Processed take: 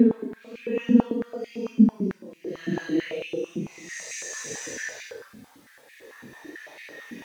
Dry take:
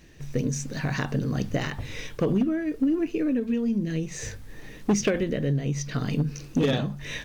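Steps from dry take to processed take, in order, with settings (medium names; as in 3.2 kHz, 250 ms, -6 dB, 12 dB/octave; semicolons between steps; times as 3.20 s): Paulstretch 5.4×, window 0.05 s, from 3.39 s; step-sequenced high-pass 9 Hz 230–2300 Hz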